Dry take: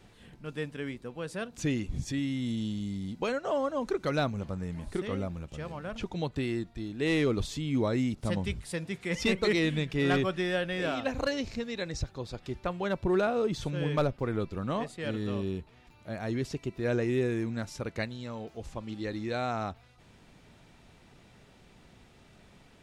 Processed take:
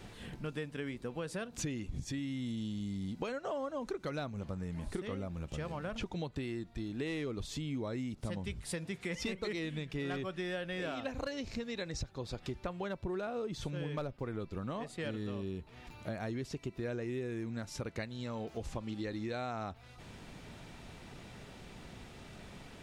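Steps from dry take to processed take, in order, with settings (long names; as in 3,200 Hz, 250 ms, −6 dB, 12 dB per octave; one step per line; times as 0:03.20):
downward compressor 6 to 1, threshold −43 dBFS, peak gain reduction 19 dB
level +6.5 dB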